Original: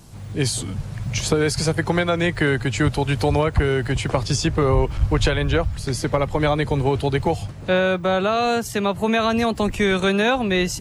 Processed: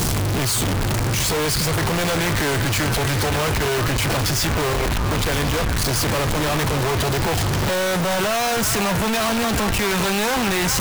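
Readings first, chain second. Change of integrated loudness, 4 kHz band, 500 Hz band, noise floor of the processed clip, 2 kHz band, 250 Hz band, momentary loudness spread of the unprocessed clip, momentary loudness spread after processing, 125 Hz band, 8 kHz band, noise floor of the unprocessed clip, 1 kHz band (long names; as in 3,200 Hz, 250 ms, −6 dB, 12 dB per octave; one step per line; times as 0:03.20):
+1.0 dB, +4.5 dB, −2.5 dB, −20 dBFS, +2.0 dB, −1.0 dB, 5 LU, 2 LU, +0.5 dB, +7.5 dB, −34 dBFS, +1.5 dB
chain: sign of each sample alone
echo through a band-pass that steps 397 ms, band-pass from 1,200 Hz, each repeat 0.7 octaves, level −4 dB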